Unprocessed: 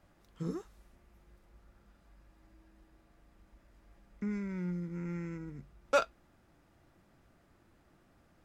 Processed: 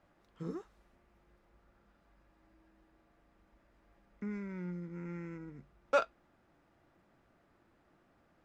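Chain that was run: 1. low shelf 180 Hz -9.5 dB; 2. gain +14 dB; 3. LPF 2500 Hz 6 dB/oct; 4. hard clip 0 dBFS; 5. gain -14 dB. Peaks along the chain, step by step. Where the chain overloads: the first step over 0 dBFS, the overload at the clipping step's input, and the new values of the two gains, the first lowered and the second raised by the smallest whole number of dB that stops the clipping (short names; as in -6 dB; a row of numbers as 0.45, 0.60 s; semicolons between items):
-16.5, -2.5, -3.0, -3.0, -17.0 dBFS; no overload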